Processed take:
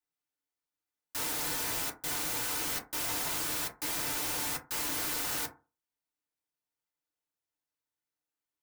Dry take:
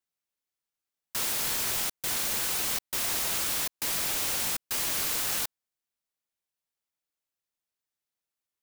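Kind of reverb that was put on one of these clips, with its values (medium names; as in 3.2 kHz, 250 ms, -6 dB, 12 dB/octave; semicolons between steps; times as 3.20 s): FDN reverb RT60 0.32 s, low-frequency decay 1×, high-frequency decay 0.35×, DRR -2 dB; trim -6 dB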